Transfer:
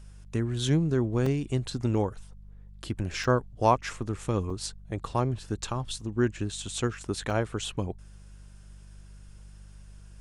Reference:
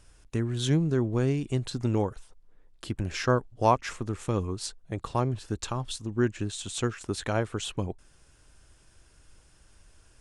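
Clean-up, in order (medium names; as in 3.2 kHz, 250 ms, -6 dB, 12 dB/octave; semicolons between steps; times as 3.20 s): de-hum 49.4 Hz, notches 4; interpolate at 1.26/3.24/4.50/6.01/7.30 s, 3.7 ms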